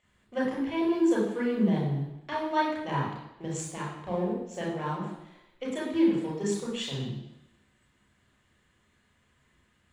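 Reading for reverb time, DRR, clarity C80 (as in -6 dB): 0.90 s, -4.5 dB, 6.0 dB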